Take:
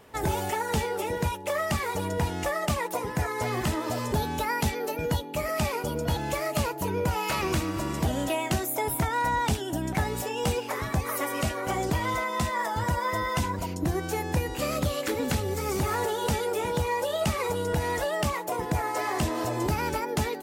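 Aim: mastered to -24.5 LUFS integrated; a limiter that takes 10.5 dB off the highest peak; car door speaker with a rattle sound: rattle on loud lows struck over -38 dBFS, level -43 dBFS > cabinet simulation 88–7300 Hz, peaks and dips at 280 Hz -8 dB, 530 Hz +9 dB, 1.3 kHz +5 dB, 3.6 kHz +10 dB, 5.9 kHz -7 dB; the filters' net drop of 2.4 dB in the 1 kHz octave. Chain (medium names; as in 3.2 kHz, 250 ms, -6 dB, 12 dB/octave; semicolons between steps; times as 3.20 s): peaking EQ 1 kHz -5 dB; peak limiter -27.5 dBFS; rattle on loud lows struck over -38 dBFS, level -43 dBFS; cabinet simulation 88–7300 Hz, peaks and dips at 280 Hz -8 dB, 530 Hz +9 dB, 1.3 kHz +5 dB, 3.6 kHz +10 dB, 5.9 kHz -7 dB; trim +9 dB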